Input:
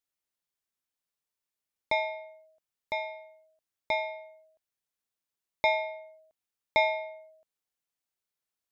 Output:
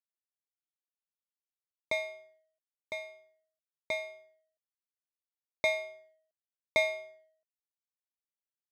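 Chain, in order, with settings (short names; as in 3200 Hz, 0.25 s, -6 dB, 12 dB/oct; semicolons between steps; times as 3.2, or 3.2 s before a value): power-law curve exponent 1.4; notch comb 870 Hz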